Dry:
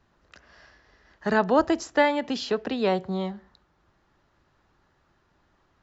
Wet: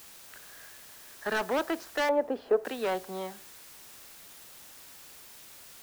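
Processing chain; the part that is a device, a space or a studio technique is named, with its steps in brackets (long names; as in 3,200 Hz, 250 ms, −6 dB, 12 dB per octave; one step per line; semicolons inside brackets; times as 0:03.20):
drive-through speaker (band-pass filter 380–3,300 Hz; parametric band 1,600 Hz +5.5 dB 0.35 octaves; hard clipping −22 dBFS, distortion −8 dB; white noise bed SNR 14 dB)
0:02.09–0:02.65: drawn EQ curve 190 Hz 0 dB, 520 Hz +10 dB, 3,300 Hz −16 dB
level −3 dB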